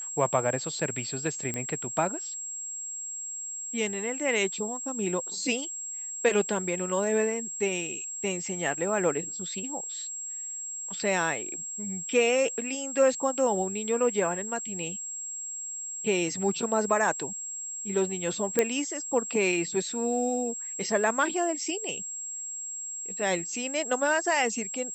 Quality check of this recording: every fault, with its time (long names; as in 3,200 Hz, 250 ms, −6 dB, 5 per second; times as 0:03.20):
whistle 7,600 Hz −34 dBFS
0:01.54: click −17 dBFS
0:18.59: click −8 dBFS